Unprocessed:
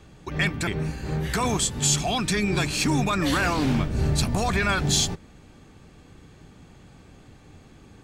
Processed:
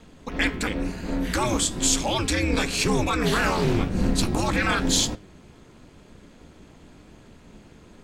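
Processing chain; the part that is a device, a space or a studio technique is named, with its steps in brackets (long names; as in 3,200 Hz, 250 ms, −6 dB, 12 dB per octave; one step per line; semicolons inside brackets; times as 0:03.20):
alien voice (ring modulation 120 Hz; flanger 0.98 Hz, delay 8.5 ms, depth 6.5 ms, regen +81%)
level +8 dB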